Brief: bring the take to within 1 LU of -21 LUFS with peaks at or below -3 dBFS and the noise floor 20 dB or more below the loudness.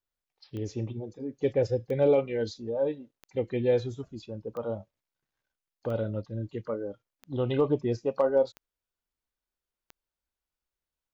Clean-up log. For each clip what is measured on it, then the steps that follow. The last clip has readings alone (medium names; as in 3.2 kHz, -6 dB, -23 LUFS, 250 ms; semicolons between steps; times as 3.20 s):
clicks found 8; loudness -30.0 LUFS; peak level -14.0 dBFS; loudness target -21.0 LUFS
-> de-click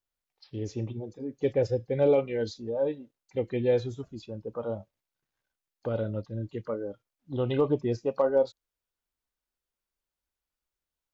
clicks found 0; loudness -30.0 LUFS; peak level -13.0 dBFS; loudness target -21.0 LUFS
-> trim +9 dB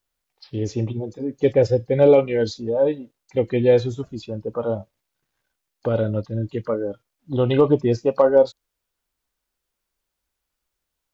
loudness -21.0 LUFS; peak level -4.0 dBFS; noise floor -81 dBFS